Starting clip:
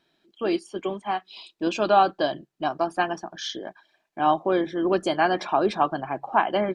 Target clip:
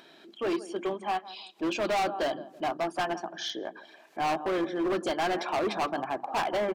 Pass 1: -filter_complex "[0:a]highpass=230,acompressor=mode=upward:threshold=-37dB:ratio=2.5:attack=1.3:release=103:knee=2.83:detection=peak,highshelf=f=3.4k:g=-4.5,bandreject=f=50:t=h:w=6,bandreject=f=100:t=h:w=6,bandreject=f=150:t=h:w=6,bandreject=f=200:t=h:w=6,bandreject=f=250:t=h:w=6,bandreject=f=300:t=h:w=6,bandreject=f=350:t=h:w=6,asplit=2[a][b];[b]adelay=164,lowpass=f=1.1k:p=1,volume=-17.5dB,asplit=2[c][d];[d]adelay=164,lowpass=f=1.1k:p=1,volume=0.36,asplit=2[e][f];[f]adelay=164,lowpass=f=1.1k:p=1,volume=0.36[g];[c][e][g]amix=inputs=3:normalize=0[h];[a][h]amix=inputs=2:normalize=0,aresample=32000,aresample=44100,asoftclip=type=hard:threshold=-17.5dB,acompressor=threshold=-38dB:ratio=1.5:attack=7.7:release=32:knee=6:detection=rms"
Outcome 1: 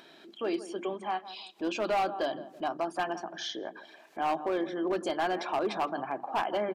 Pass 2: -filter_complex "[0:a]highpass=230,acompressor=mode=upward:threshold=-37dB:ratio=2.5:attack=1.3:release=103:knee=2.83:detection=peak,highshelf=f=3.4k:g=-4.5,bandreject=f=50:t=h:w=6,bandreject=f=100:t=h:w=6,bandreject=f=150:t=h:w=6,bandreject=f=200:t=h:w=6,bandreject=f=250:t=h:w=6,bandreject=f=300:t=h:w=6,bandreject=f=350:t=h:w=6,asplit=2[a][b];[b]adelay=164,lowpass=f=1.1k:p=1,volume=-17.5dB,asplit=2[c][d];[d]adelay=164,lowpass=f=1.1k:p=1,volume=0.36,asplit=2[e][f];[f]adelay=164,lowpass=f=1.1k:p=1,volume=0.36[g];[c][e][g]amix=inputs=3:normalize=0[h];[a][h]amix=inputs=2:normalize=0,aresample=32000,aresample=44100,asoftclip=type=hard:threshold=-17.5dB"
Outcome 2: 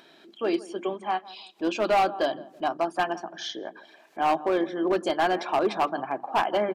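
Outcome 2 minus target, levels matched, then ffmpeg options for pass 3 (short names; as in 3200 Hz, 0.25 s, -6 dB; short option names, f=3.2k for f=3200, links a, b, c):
hard clip: distortion -7 dB
-filter_complex "[0:a]highpass=230,acompressor=mode=upward:threshold=-37dB:ratio=2.5:attack=1.3:release=103:knee=2.83:detection=peak,highshelf=f=3.4k:g=-4.5,bandreject=f=50:t=h:w=6,bandreject=f=100:t=h:w=6,bandreject=f=150:t=h:w=6,bandreject=f=200:t=h:w=6,bandreject=f=250:t=h:w=6,bandreject=f=300:t=h:w=6,bandreject=f=350:t=h:w=6,asplit=2[a][b];[b]adelay=164,lowpass=f=1.1k:p=1,volume=-17.5dB,asplit=2[c][d];[d]adelay=164,lowpass=f=1.1k:p=1,volume=0.36,asplit=2[e][f];[f]adelay=164,lowpass=f=1.1k:p=1,volume=0.36[g];[c][e][g]amix=inputs=3:normalize=0[h];[a][h]amix=inputs=2:normalize=0,aresample=32000,aresample=44100,asoftclip=type=hard:threshold=-25dB"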